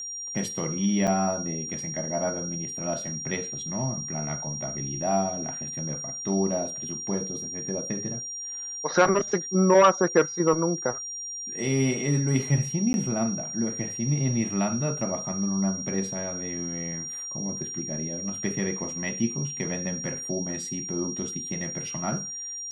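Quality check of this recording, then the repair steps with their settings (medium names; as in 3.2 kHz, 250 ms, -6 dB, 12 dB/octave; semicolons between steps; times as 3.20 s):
whine 5.7 kHz -33 dBFS
1.07–1.08 s: dropout 7.3 ms
12.93–12.94 s: dropout 11 ms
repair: band-stop 5.7 kHz, Q 30; interpolate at 1.07 s, 7.3 ms; interpolate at 12.93 s, 11 ms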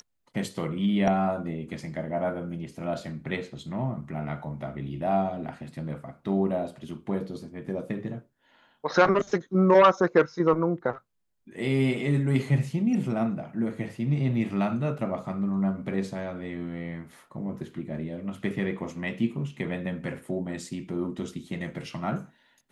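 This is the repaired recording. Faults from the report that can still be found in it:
nothing left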